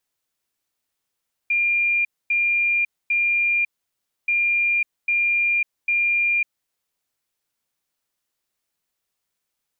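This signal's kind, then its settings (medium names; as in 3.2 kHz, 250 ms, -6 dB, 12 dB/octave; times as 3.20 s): beep pattern sine 2.4 kHz, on 0.55 s, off 0.25 s, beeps 3, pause 0.63 s, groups 2, -17 dBFS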